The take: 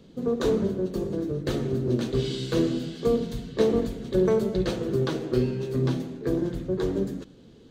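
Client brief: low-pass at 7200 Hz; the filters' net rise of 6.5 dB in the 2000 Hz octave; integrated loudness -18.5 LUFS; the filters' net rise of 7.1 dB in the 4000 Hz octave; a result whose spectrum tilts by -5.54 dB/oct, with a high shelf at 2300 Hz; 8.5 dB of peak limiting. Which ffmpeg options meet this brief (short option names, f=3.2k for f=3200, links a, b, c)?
-af "lowpass=7.2k,equalizer=f=2k:t=o:g=6,highshelf=f=2.3k:g=3.5,equalizer=f=4k:t=o:g=4,volume=9dB,alimiter=limit=-7dB:level=0:latency=1"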